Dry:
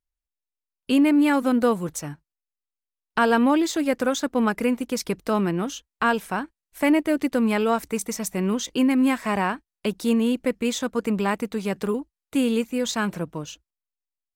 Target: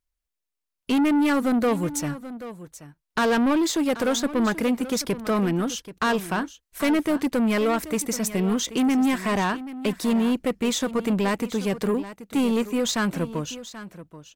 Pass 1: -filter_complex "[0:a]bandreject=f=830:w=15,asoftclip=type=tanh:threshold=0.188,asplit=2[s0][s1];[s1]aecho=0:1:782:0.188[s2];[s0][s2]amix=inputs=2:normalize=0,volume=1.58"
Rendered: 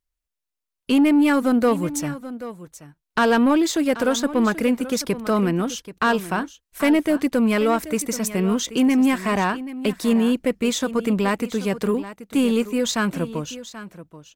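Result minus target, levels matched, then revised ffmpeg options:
saturation: distortion -8 dB
-filter_complex "[0:a]bandreject=f=830:w=15,asoftclip=type=tanh:threshold=0.0841,asplit=2[s0][s1];[s1]aecho=0:1:782:0.188[s2];[s0][s2]amix=inputs=2:normalize=0,volume=1.58"

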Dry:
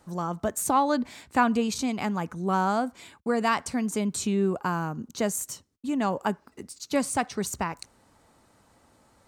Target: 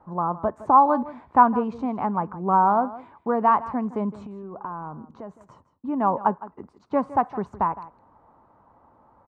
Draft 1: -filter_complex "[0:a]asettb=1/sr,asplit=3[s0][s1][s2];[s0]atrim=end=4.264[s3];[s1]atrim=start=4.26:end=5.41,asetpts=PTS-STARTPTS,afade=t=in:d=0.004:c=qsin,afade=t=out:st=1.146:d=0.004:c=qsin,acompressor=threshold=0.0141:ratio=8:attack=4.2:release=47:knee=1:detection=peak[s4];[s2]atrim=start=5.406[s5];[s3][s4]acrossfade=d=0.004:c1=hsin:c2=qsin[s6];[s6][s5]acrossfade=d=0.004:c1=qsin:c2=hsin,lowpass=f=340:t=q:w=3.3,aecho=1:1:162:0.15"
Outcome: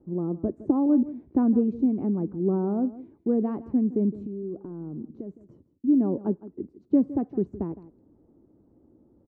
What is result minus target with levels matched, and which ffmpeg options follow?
1 kHz band -19.5 dB
-filter_complex "[0:a]asettb=1/sr,asplit=3[s0][s1][s2];[s0]atrim=end=4.264[s3];[s1]atrim=start=4.26:end=5.41,asetpts=PTS-STARTPTS,afade=t=in:d=0.004:c=qsin,afade=t=out:st=1.146:d=0.004:c=qsin,acompressor=threshold=0.0141:ratio=8:attack=4.2:release=47:knee=1:detection=peak[s4];[s2]atrim=start=5.406[s5];[s3][s4]acrossfade=d=0.004:c1=hsin:c2=qsin[s6];[s6][s5]acrossfade=d=0.004:c1=qsin:c2=hsin,lowpass=f=1000:t=q:w=3.3,aecho=1:1:162:0.15"

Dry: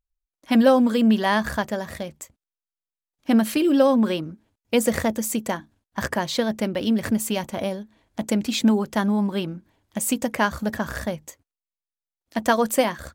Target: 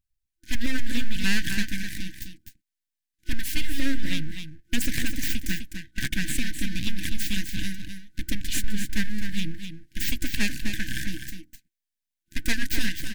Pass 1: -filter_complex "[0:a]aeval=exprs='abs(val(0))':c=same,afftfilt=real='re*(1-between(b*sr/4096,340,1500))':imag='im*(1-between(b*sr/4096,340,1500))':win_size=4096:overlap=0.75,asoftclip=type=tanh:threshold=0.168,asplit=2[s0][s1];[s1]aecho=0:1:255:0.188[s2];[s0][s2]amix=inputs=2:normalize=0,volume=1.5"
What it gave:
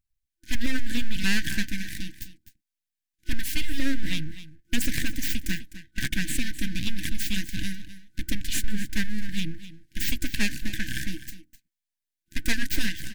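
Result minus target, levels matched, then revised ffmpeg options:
echo-to-direct -6.5 dB
-filter_complex "[0:a]aeval=exprs='abs(val(0))':c=same,afftfilt=real='re*(1-between(b*sr/4096,340,1500))':imag='im*(1-between(b*sr/4096,340,1500))':win_size=4096:overlap=0.75,asoftclip=type=tanh:threshold=0.168,asplit=2[s0][s1];[s1]aecho=0:1:255:0.398[s2];[s0][s2]amix=inputs=2:normalize=0,volume=1.5"

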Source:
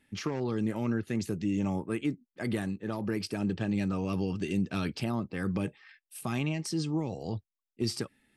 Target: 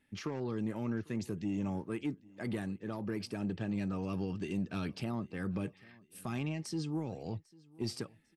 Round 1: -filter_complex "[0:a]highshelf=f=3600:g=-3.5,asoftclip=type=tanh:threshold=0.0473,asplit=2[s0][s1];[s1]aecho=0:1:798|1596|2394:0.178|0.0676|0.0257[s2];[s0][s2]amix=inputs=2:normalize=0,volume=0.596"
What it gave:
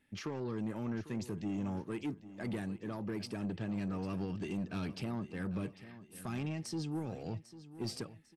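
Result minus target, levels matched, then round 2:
saturation: distortion +10 dB; echo-to-direct +9 dB
-filter_complex "[0:a]highshelf=f=3600:g=-3.5,asoftclip=type=tanh:threshold=0.1,asplit=2[s0][s1];[s1]aecho=0:1:798|1596:0.0631|0.024[s2];[s0][s2]amix=inputs=2:normalize=0,volume=0.596"

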